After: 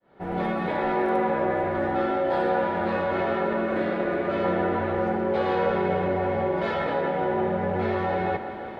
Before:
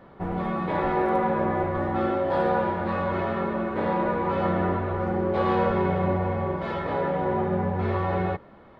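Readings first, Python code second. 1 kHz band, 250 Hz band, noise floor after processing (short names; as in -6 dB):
0.0 dB, -0.5 dB, -35 dBFS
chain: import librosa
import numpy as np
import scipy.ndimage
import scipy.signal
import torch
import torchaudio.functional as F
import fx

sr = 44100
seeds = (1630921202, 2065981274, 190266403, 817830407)

p1 = fx.fade_in_head(x, sr, length_s=0.92)
p2 = fx.low_shelf(p1, sr, hz=180.0, db=-11.5)
p3 = fx.over_compress(p2, sr, threshold_db=-37.0, ratio=-1.0)
p4 = p2 + F.gain(torch.from_numpy(p3), 1.5).numpy()
p5 = fx.peak_eq(p4, sr, hz=1100.0, db=-10.5, octaves=0.25)
p6 = p5 + fx.echo_bbd(p5, sr, ms=168, stages=4096, feedback_pct=80, wet_db=-13, dry=0)
y = fx.spec_repair(p6, sr, seeds[0], start_s=3.7, length_s=0.72, low_hz=330.0, high_hz=1100.0, source='before')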